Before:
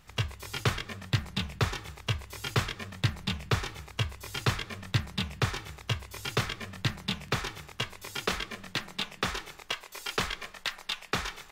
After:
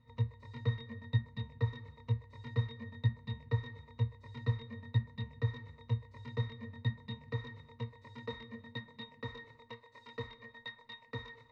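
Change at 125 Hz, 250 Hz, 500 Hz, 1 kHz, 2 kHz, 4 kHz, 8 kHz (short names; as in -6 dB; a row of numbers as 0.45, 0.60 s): -2.0 dB, -7.0 dB, -7.5 dB, -14.0 dB, -13.5 dB, -16.5 dB, under -35 dB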